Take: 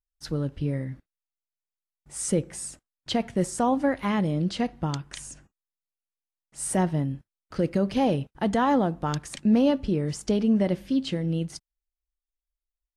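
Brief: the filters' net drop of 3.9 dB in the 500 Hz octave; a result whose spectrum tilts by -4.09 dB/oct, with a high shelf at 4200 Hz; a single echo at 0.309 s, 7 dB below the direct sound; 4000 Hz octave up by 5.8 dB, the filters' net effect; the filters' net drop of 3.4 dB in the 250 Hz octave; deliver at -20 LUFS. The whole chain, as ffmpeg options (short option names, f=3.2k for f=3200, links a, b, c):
-af "equalizer=f=250:t=o:g=-3.5,equalizer=f=500:t=o:g=-4,equalizer=f=4k:t=o:g=3.5,highshelf=f=4.2k:g=7.5,aecho=1:1:309:0.447,volume=7.5dB"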